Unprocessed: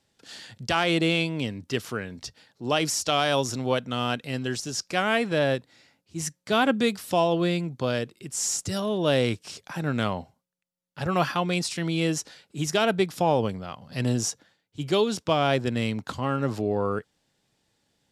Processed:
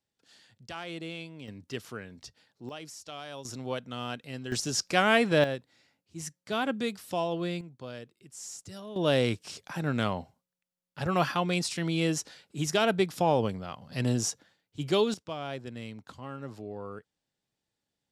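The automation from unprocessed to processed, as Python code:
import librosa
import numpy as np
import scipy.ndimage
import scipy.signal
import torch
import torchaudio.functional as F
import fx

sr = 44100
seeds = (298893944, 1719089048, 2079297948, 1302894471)

y = fx.gain(x, sr, db=fx.steps((0.0, -16.0), (1.48, -9.0), (2.69, -18.5), (3.45, -9.0), (4.52, 1.0), (5.44, -8.0), (7.61, -15.0), (8.96, -2.5), (15.14, -14.0)))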